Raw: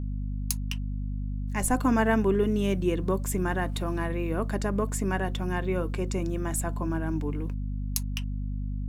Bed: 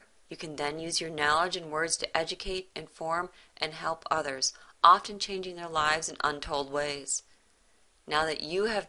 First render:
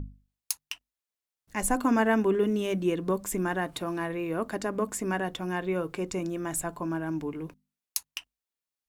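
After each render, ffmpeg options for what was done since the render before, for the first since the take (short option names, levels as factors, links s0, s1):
-af "bandreject=f=50:t=h:w=6,bandreject=f=100:t=h:w=6,bandreject=f=150:t=h:w=6,bandreject=f=200:t=h:w=6,bandreject=f=250:t=h:w=6"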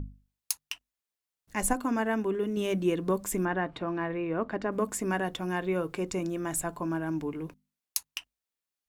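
-filter_complex "[0:a]asettb=1/sr,asplit=3[s0][s1][s2];[s0]atrim=end=3.454[s3];[s1]atrim=start=3.45:end=4.72,asetpts=PTS-STARTPTS,afade=t=in:d=0.004:c=qsin,afade=t=out:st=1.266:d=0.004:c=qsin,lowpass=2700[s4];[s2]atrim=start=4.716[s5];[s3][s4]acrossfade=d=0.004:c1=hsin:c2=qsin[s6];[s6][s5]acrossfade=d=0.004:c1=qsin:c2=hsin,asplit=3[s7][s8][s9];[s7]atrim=end=1.732[s10];[s8]atrim=start=1.728:end=2.572,asetpts=PTS-STARTPTS,volume=0.562[s11];[s9]atrim=start=2.568[s12];[s10][s11]acrossfade=d=0.004:c1=hsin:c2=hsin[s13];[s13][s12]acrossfade=d=0.004:c1=hsin:c2=hsin"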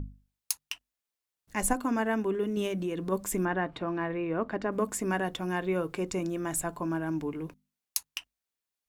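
-filter_complex "[0:a]asplit=3[s0][s1][s2];[s0]afade=t=out:st=2.67:d=0.02[s3];[s1]acompressor=threshold=0.0355:ratio=4:attack=3.2:release=140:knee=1:detection=peak,afade=t=in:st=2.67:d=0.02,afade=t=out:st=3.11:d=0.02[s4];[s2]afade=t=in:st=3.11:d=0.02[s5];[s3][s4][s5]amix=inputs=3:normalize=0"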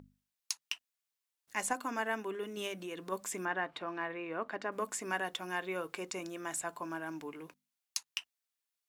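-filter_complex "[0:a]highpass=f=1100:p=1,acrossover=split=7900[s0][s1];[s1]acompressor=threshold=0.00398:ratio=4:attack=1:release=60[s2];[s0][s2]amix=inputs=2:normalize=0"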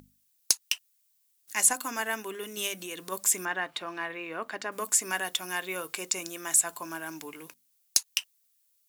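-af "crystalizer=i=5.5:c=0,volume=2.11,asoftclip=hard,volume=0.473"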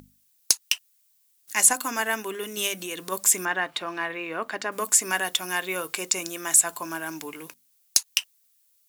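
-af "volume=1.78,alimiter=limit=0.708:level=0:latency=1"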